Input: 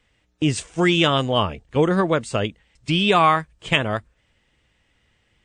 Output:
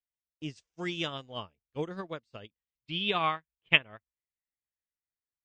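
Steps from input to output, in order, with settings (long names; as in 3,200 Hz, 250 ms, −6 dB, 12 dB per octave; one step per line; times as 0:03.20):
low-pass filter sweep 5,500 Hz → 1,500 Hz, 0:01.95–0:05.19
expander for the loud parts 2.5 to 1, over −33 dBFS
level −7.5 dB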